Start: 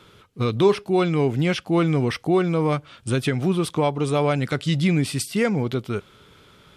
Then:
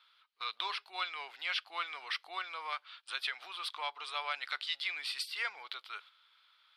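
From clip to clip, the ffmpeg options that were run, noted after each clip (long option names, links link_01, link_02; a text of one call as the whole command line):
ffmpeg -i in.wav -af "highpass=frequency=1000:width=0.5412,highpass=frequency=1000:width=1.3066,highshelf=frequency=5400:width_type=q:width=3:gain=-7.5,agate=range=-7dB:threshold=-47dB:ratio=16:detection=peak,volume=-7.5dB" out.wav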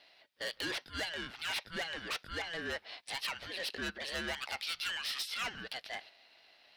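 ffmpeg -i in.wav -af "asoftclip=type=tanh:threshold=-37dB,aeval=exprs='val(0)*sin(2*PI*660*n/s)':channel_layout=same,volume=7.5dB" out.wav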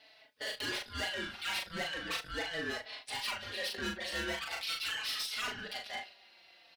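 ffmpeg -i in.wav -filter_complex "[0:a]asplit=2[link_01][link_02];[link_02]asoftclip=type=hard:threshold=-38dB,volume=-5.5dB[link_03];[link_01][link_03]amix=inputs=2:normalize=0,aecho=1:1:39|72:0.668|0.141,asplit=2[link_04][link_05];[link_05]adelay=4.1,afreqshift=-0.41[link_06];[link_04][link_06]amix=inputs=2:normalize=1" out.wav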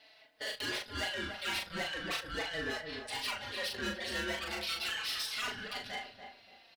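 ffmpeg -i in.wav -filter_complex "[0:a]asplit=2[link_01][link_02];[link_02]adelay=288,lowpass=frequency=920:poles=1,volume=-4.5dB,asplit=2[link_03][link_04];[link_04]adelay=288,lowpass=frequency=920:poles=1,volume=0.34,asplit=2[link_05][link_06];[link_06]adelay=288,lowpass=frequency=920:poles=1,volume=0.34,asplit=2[link_07][link_08];[link_08]adelay=288,lowpass=frequency=920:poles=1,volume=0.34[link_09];[link_01][link_03][link_05][link_07][link_09]amix=inputs=5:normalize=0" out.wav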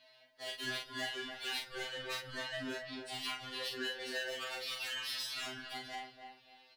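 ffmpeg -i in.wav -af "afftfilt=real='re*2.45*eq(mod(b,6),0)':imag='im*2.45*eq(mod(b,6),0)':win_size=2048:overlap=0.75,volume=-1dB" out.wav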